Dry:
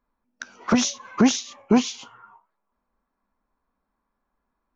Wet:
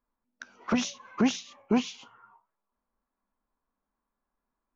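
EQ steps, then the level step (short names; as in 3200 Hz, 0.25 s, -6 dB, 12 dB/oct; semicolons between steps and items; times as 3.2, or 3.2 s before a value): dynamic EQ 2700 Hz, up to +5 dB, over -42 dBFS, Q 2.3; high shelf 6400 Hz -10 dB; notches 60/120/180 Hz; -7.0 dB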